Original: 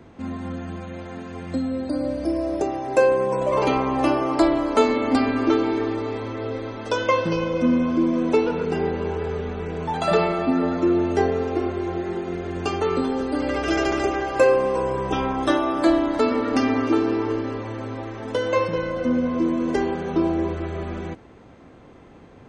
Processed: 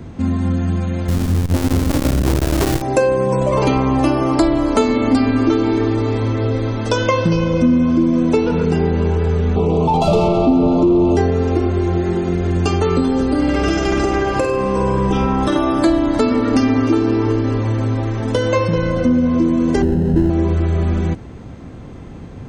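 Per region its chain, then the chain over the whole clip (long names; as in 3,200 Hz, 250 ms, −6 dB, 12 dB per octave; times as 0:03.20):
0:01.08–0:02.82: each half-wave held at its own peak + low-shelf EQ 97 Hz +11.5 dB + saturating transformer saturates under 620 Hz
0:09.56–0:11.17: mid-hump overdrive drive 22 dB, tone 1,000 Hz, clips at −6.5 dBFS + Butterworth band-reject 1,700 Hz, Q 1
0:13.26–0:15.56: high-shelf EQ 8,900 Hz −7.5 dB + downward compressor, threshold −20 dBFS + flutter between parallel walls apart 8.7 metres, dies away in 0.5 s
0:19.82–0:20.30: each half-wave held at its own peak + moving average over 38 samples
whole clip: bass and treble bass +12 dB, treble +6 dB; downward compressor 2.5 to 1, threshold −20 dBFS; level +6.5 dB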